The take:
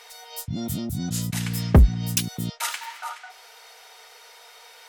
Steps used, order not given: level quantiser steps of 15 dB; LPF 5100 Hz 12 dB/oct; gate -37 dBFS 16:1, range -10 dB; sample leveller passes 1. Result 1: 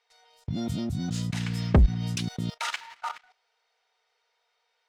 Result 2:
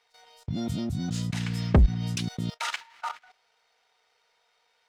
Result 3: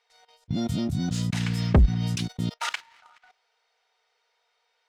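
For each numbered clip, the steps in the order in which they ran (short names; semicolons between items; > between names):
LPF > gate > sample leveller > level quantiser; LPF > sample leveller > level quantiser > gate; level quantiser > LPF > gate > sample leveller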